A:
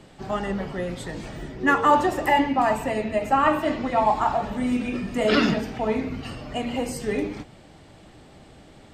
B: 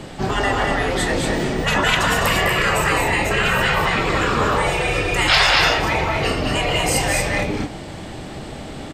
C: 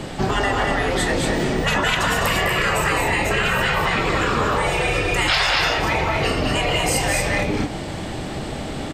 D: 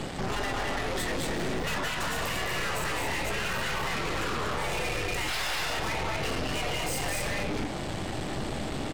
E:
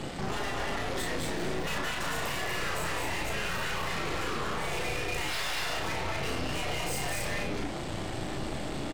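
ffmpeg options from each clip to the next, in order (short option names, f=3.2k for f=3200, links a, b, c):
-af "aecho=1:1:29.15|204.1|236.2:0.251|0.447|0.562,aeval=exprs='0.794*sin(PI/2*1.78*val(0)/0.794)':c=same,afftfilt=real='re*lt(hypot(re,im),0.447)':imag='im*lt(hypot(re,im),0.447)':win_size=1024:overlap=0.75,volume=5.5dB"
-af "acompressor=threshold=-22dB:ratio=3,volume=4dB"
-af "alimiter=limit=-12dB:level=0:latency=1:release=108,aeval=exprs='(tanh(28.2*val(0)+0.7)-tanh(0.7))/28.2':c=same"
-filter_complex "[0:a]asplit=2[a][b];[b]adelay=35,volume=-4dB[c];[a][c]amix=inputs=2:normalize=0,volume=-3.5dB"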